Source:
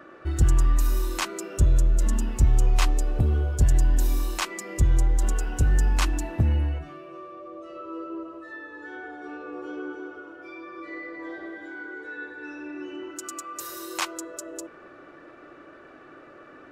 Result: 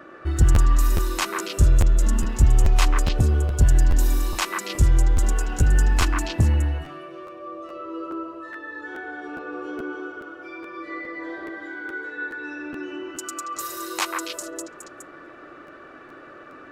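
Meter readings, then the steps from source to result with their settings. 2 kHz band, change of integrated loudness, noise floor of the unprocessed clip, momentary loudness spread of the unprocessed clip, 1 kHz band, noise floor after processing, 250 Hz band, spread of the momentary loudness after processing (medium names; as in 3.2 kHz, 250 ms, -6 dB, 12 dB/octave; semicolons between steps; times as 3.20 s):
+5.5 dB, +3.0 dB, -48 dBFS, 17 LU, +5.0 dB, -44 dBFS, +3.0 dB, 19 LU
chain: repeats whose band climbs or falls 139 ms, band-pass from 1.4 kHz, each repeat 1.4 oct, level -0.5 dB; crackling interface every 0.42 s, samples 512, repeat, from 0.54 s; trim +3 dB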